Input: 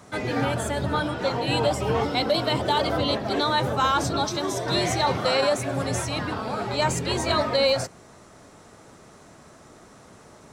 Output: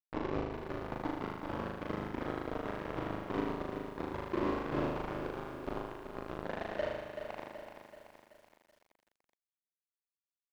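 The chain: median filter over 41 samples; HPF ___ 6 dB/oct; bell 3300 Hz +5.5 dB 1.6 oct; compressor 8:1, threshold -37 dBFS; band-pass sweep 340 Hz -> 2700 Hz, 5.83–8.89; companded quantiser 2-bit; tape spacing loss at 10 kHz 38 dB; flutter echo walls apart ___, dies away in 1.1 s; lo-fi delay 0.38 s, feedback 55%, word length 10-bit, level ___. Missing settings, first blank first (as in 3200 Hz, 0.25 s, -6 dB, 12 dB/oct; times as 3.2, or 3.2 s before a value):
59 Hz, 6.6 m, -8 dB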